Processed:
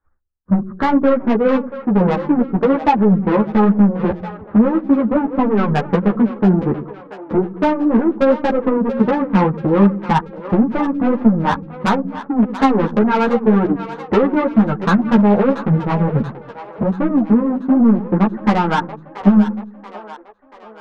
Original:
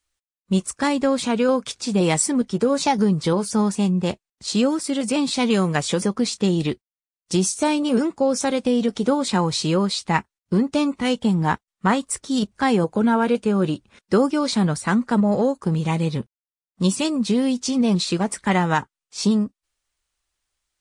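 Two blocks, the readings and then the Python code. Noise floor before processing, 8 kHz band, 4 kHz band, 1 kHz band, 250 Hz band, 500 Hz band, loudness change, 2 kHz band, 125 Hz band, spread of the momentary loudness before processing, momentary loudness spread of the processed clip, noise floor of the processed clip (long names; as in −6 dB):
below −85 dBFS, below −20 dB, −9.0 dB, +6.0 dB, +6.0 dB, +5.0 dB, +5.0 dB, +2.5 dB, +5.0 dB, 5 LU, 8 LU, −39 dBFS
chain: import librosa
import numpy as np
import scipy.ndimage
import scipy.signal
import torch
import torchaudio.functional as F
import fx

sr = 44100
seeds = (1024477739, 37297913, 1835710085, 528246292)

p1 = scipy.signal.sosfilt(scipy.signal.butter(8, 1600.0, 'lowpass', fs=sr, output='sos'), x)
p2 = fx.transient(p1, sr, attack_db=12, sustain_db=-8)
p3 = fx.over_compress(p2, sr, threshold_db=-18.0, ratio=-0.5)
p4 = p2 + (p3 * 10.0 ** (-1.0 / 20.0))
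p5 = 10.0 ** (-11.5 / 20.0) * np.tanh(p4 / 10.0 ** (-11.5 / 20.0))
p6 = p5 + fx.echo_split(p5, sr, split_hz=390.0, low_ms=96, high_ms=683, feedback_pct=52, wet_db=-12.0, dry=0)
p7 = fx.ensemble(p6, sr)
y = p7 * 10.0 ** (5.0 / 20.0)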